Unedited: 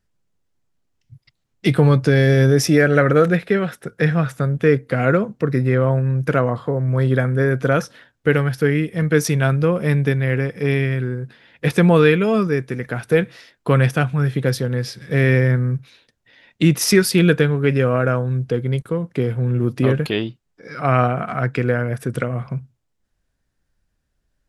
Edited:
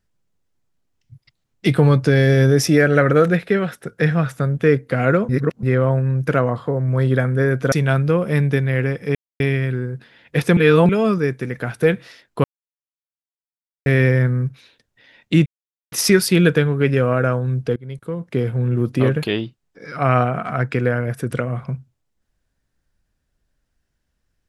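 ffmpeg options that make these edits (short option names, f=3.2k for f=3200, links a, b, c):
-filter_complex "[0:a]asplit=11[a][b][c][d][e][f][g][h][i][j][k];[a]atrim=end=5.292[l];[b]atrim=start=5.288:end=5.632,asetpts=PTS-STARTPTS,areverse[m];[c]atrim=start=5.628:end=7.722[n];[d]atrim=start=9.258:end=10.69,asetpts=PTS-STARTPTS,afade=t=out:st=1.428:d=0.004:c=hsin,apad=pad_dur=0.25[o];[e]atrim=start=10.69:end=11.862,asetpts=PTS-STARTPTS,afade=t=in:d=0.004:c=hsin[p];[f]atrim=start=11.858:end=12.182,asetpts=PTS-STARTPTS,areverse[q];[g]atrim=start=12.178:end=13.73,asetpts=PTS-STARTPTS,afade=t=out:st=1.548:d=0.004:c=hsin[r];[h]atrim=start=13.73:end=15.15,asetpts=PTS-STARTPTS,volume=0[s];[i]atrim=start=15.15:end=16.75,asetpts=PTS-STARTPTS,afade=t=in:d=0.004:c=hsin,afade=t=out:st=1.596:d=0.004:c=hsin,apad=pad_dur=0.46[t];[j]atrim=start=16.75:end=18.59,asetpts=PTS-STARTPTS,afade=t=in:d=0.004:c=hsin,afade=t=out:st=1.836:d=0.004:c=hsin:silence=0.0841395[u];[k]atrim=start=18.59,asetpts=PTS-STARTPTS,afade=t=in:d=0.63:silence=0.0841395[v];[l][m]acrossfade=d=0.004:c1=hsin:c2=hsin[w];[w][n]acrossfade=d=0.004:c1=hsin:c2=hsin[x];[o][p]concat=n=2:v=0:a=1[y];[x][y]acrossfade=d=0.004:c1=hsin:c2=hsin[z];[z][q]acrossfade=d=0.004:c1=hsin:c2=hsin[aa];[r][s][t][u][v]concat=n=5:v=0:a=1[ab];[aa][ab]acrossfade=d=0.004:c1=hsin:c2=hsin"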